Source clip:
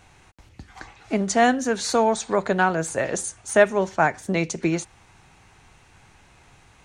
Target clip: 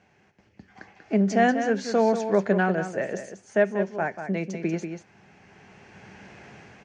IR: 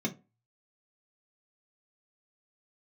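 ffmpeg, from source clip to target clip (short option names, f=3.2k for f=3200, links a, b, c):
-filter_complex "[0:a]highpass=120,equalizer=f=200:t=q:w=4:g=10,equalizer=f=410:t=q:w=4:g=6,equalizer=f=610:t=q:w=4:g=4,equalizer=f=1.2k:t=q:w=4:g=-6,equalizer=f=1.7k:t=q:w=4:g=4,equalizer=f=3.8k:t=q:w=4:g=-10,lowpass=f=5.5k:w=0.5412,lowpass=f=5.5k:w=1.3066,bandreject=f=940:w=19,asplit=2[a][b];[b]aecho=0:1:189:0.355[c];[a][c]amix=inputs=2:normalize=0,dynaudnorm=f=390:g=5:m=16.5dB,volume=-8dB"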